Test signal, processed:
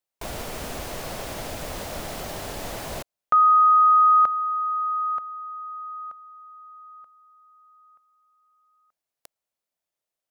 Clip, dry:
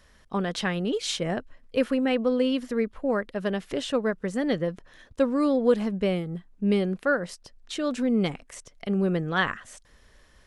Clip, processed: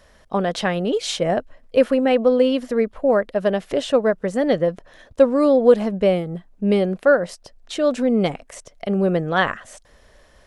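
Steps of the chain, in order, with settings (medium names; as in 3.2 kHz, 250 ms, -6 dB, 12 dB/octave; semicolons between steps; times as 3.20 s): peaking EQ 630 Hz +9 dB 0.85 oct; trim +3.5 dB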